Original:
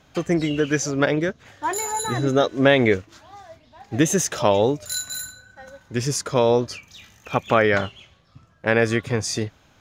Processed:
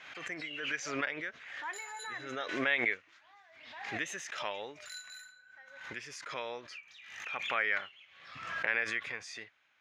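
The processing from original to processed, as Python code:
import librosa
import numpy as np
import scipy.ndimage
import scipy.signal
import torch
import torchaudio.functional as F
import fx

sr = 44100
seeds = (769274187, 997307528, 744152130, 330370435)

y = fx.bandpass_q(x, sr, hz=2100.0, q=2.2)
y = fx.pre_swell(y, sr, db_per_s=54.0)
y = y * 10.0 ** (-6.0 / 20.0)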